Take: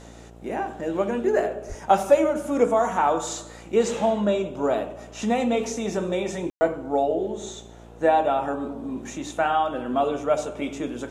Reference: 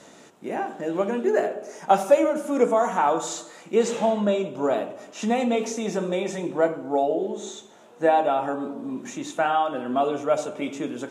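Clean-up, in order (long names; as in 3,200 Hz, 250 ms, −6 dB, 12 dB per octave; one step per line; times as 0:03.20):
hum removal 57.7 Hz, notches 14
high-pass at the plosives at 0:01.68
ambience match 0:06.50–0:06.61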